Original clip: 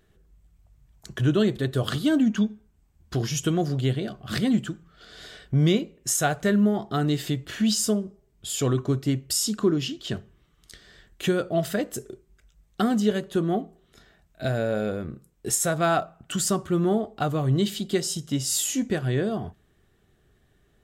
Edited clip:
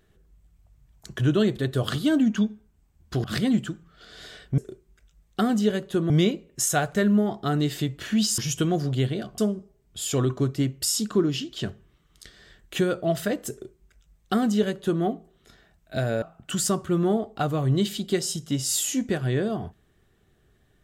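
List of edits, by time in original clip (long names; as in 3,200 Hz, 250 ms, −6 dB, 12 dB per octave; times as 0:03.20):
0:03.24–0:04.24: move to 0:07.86
0:11.99–0:13.51: duplicate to 0:05.58
0:14.70–0:16.03: remove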